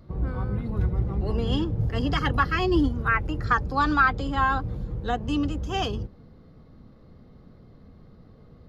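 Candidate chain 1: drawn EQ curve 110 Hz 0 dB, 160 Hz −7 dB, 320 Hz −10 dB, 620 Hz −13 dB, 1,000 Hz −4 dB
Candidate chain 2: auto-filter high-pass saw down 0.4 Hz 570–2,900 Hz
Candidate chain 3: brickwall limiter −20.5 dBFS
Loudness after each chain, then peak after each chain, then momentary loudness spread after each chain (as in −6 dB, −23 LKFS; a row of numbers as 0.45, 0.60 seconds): −29.0, −22.5, −30.0 LKFS; −11.5, −3.5, −20.5 dBFS; 8, 20, 4 LU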